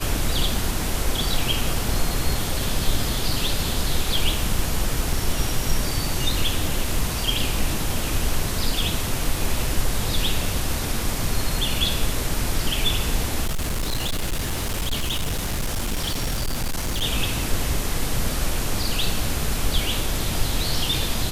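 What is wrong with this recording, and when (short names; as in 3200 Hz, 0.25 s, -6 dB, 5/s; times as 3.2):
5.13 gap 3 ms
13.45–17.04 clipped -20.5 dBFS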